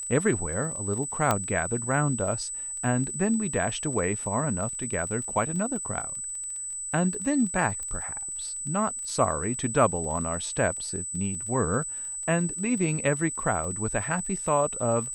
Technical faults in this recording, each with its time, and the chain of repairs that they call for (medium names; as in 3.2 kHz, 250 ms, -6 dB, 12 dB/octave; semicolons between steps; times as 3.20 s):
crackle 20 per s -35 dBFS
whine 8 kHz -32 dBFS
1.31 s: pop -8 dBFS
7.83 s: pop -23 dBFS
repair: de-click; band-stop 8 kHz, Q 30